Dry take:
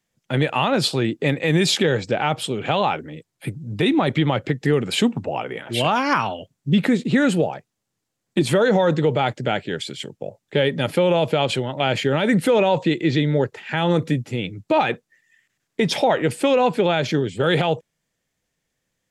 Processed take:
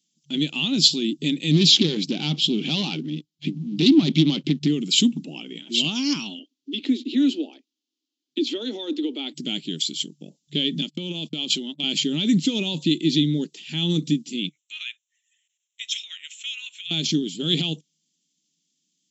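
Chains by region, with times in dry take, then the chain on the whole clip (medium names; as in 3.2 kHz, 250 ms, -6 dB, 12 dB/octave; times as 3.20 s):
1.51–4.68 s: waveshaping leveller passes 2 + distance through air 160 m + loudspeaker Doppler distortion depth 0.16 ms
6.39–9.36 s: steep high-pass 250 Hz 72 dB/octave + distance through air 200 m
10.81–11.84 s: compression 8:1, threshold -18 dBFS + high-pass 160 Hz 24 dB/octave + gate -30 dBFS, range -49 dB
14.49–16.91 s: high-pass 1.4 kHz 24 dB/octave + static phaser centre 2 kHz, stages 4
whole clip: FFT band-pass 140–7700 Hz; FFT filter 190 Hz 0 dB, 300 Hz +4 dB, 520 Hz -21 dB, 1.7 kHz -22 dB, 3.1 kHz +7 dB, 5.6 kHz +10 dB; trim -1.5 dB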